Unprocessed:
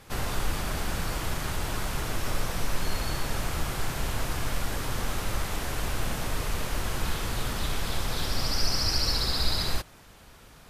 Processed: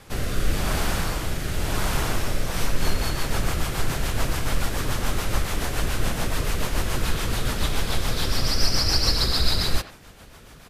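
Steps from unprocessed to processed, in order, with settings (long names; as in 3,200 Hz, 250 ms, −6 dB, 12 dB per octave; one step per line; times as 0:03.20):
rotating-speaker cabinet horn 0.9 Hz, later 7 Hz, at 0:02.25
far-end echo of a speakerphone 90 ms, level −11 dB
level +7 dB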